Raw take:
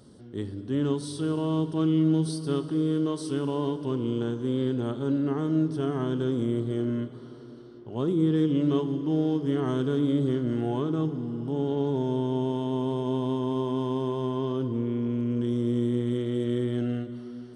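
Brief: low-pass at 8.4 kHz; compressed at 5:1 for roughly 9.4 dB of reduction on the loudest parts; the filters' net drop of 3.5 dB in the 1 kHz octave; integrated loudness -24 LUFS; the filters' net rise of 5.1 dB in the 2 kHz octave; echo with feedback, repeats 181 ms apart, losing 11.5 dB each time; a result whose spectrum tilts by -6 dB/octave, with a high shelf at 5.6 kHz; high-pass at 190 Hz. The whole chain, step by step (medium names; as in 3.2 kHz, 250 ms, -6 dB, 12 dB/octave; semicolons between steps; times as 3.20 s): high-pass 190 Hz; low-pass 8.4 kHz; peaking EQ 1 kHz -6.5 dB; peaking EQ 2 kHz +9 dB; treble shelf 5.6 kHz +3 dB; compression 5:1, threshold -32 dBFS; feedback delay 181 ms, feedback 27%, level -11.5 dB; trim +12 dB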